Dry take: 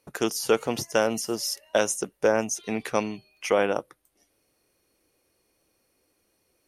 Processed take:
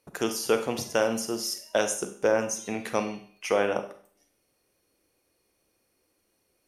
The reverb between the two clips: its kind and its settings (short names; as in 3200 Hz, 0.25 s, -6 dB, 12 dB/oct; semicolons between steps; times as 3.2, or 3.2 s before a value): Schroeder reverb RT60 0.5 s, combs from 31 ms, DRR 7.5 dB; gain -2.5 dB